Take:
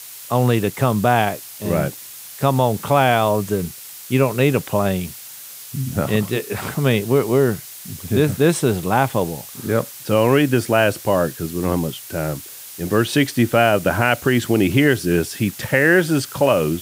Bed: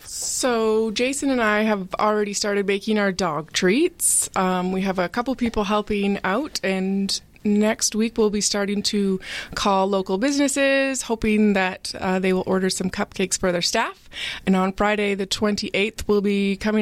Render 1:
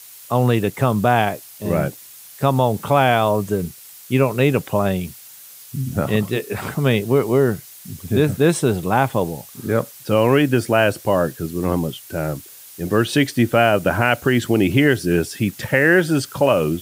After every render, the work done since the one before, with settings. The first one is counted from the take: denoiser 6 dB, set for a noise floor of -37 dBFS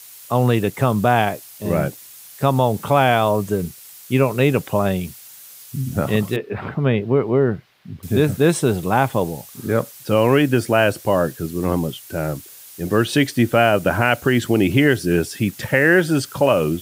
6.36–8.03 air absorption 360 m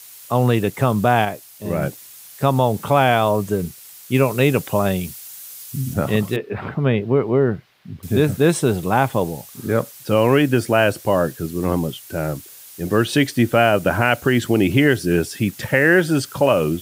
1.25–1.82 gain -3 dB; 4.14–5.94 high shelf 4000 Hz +5 dB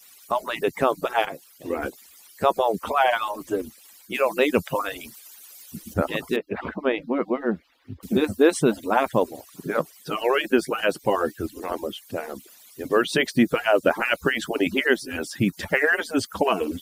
median-filter separation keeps percussive; high shelf 5400 Hz -6 dB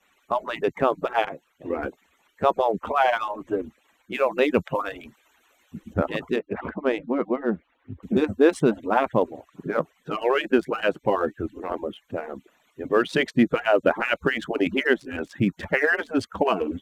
Wiener smoothing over 9 samples; high shelf 5300 Hz -9 dB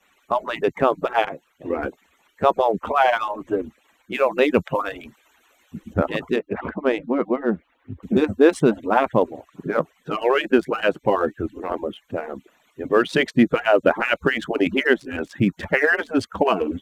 gain +3 dB

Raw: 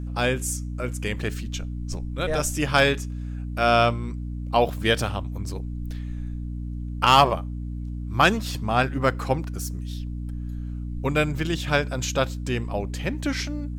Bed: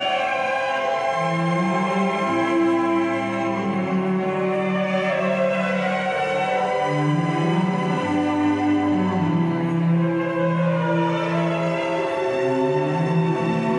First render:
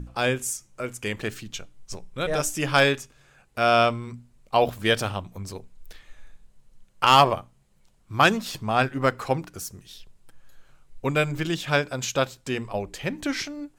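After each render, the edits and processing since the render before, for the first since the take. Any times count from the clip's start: notches 60/120/180/240/300 Hz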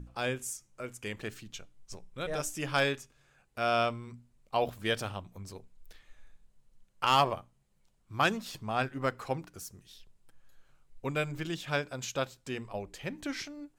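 gain -9 dB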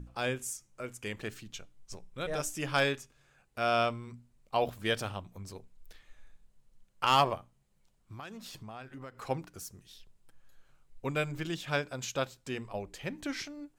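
7.36–9.22 compressor, threshold -42 dBFS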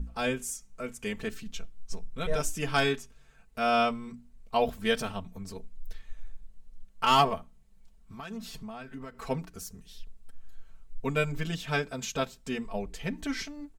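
low shelf 130 Hz +11.5 dB; comb 4.5 ms, depth 85%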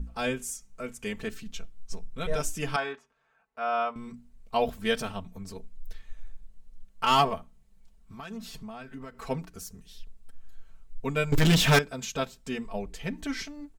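2.76–3.96 band-pass 1000 Hz, Q 1.2; 11.32–11.79 sample leveller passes 5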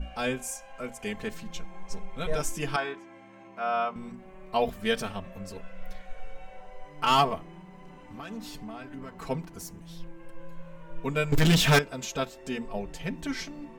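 add bed -27.5 dB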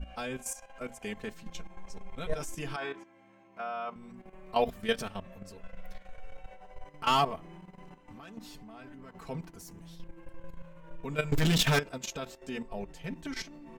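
level quantiser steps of 12 dB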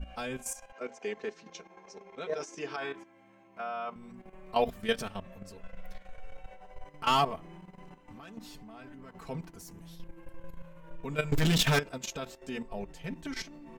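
0.72–2.78 speaker cabinet 290–6100 Hz, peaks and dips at 410 Hz +8 dB, 3200 Hz -4 dB, 6000 Hz +5 dB; 9.73–10.91 bell 12000 Hz +8.5 dB 0.32 oct

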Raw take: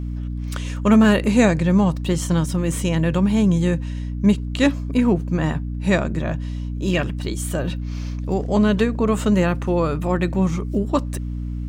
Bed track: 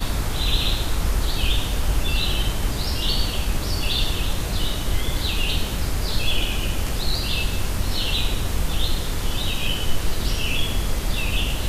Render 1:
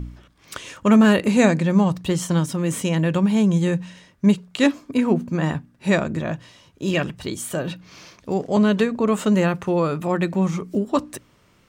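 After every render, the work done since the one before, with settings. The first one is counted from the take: de-hum 60 Hz, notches 5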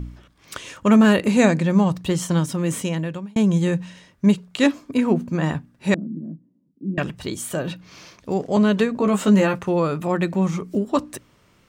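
2.73–3.36 fade out linear; 5.94–6.98 Butterworth band-pass 230 Hz, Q 2.1; 8.95–9.59 doubler 15 ms -4 dB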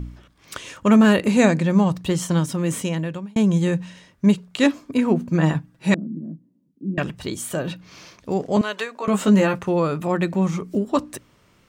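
5.31–5.94 comb 6.2 ms; 8.61–9.08 HPF 760 Hz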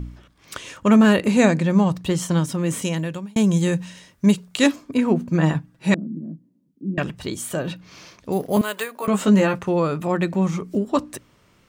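2.82–4.76 high shelf 5100 Hz +10 dB; 8.32–9.07 careless resampling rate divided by 4×, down none, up hold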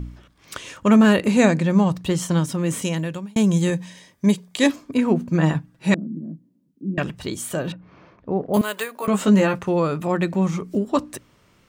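3.7–4.7 notch comb 1400 Hz; 7.72–8.54 LPF 1300 Hz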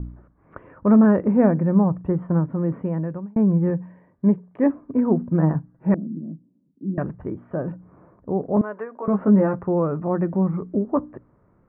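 Bessel low-pass 930 Hz, order 8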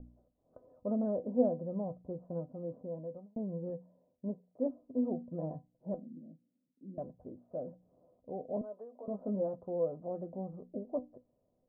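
ladder low-pass 680 Hz, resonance 70%; resonator 250 Hz, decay 0.15 s, harmonics all, mix 80%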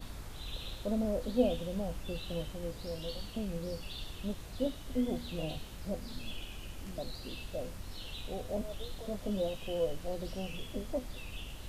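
add bed track -21 dB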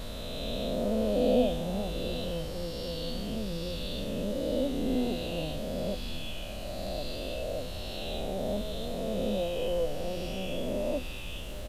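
spectral swells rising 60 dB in 2.92 s; echo 0.776 s -15 dB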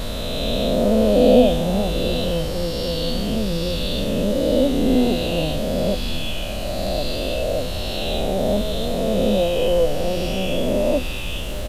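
gain +12 dB; limiter -3 dBFS, peak gain reduction 1 dB

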